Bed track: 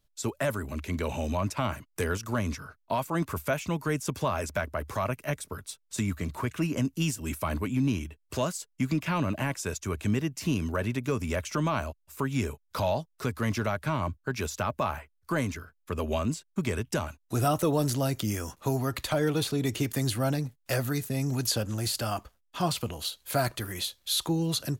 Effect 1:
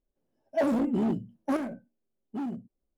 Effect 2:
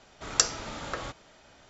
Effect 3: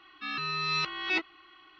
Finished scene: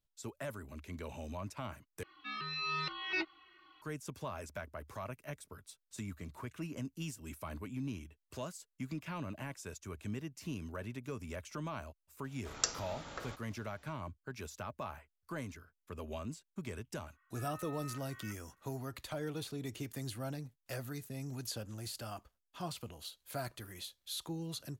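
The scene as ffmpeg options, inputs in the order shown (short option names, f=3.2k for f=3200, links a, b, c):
-filter_complex "[3:a]asplit=2[a][b];[0:a]volume=-13.5dB[c];[a]asplit=2[d][e];[e]adelay=2.8,afreqshift=-2.6[f];[d][f]amix=inputs=2:normalize=1[g];[b]asuperpass=centerf=1500:order=4:qfactor=2[h];[c]asplit=2[i][j];[i]atrim=end=2.034[k];[g]atrim=end=1.79,asetpts=PTS-STARTPTS,volume=-3.5dB[l];[j]atrim=start=3.816[m];[2:a]atrim=end=1.69,asetpts=PTS-STARTPTS,volume=-10dB,afade=t=in:d=0.004:c=hsin,afade=t=out:st=1.686:d=0.004:c=hsin,adelay=12240[n];[h]atrim=end=1.79,asetpts=PTS-STARTPTS,volume=-14dB,afade=t=in:d=0.004:c=hsin,afade=t=out:st=1.786:d=0.004:c=hsin,adelay=17130[o];[k][l]acrossfade=d=0.004:c1=hsin:c2=hsin[p];[p][m]acrossfade=d=0.004:c1=hsin:c2=hsin[q];[q][n][o]amix=inputs=3:normalize=0"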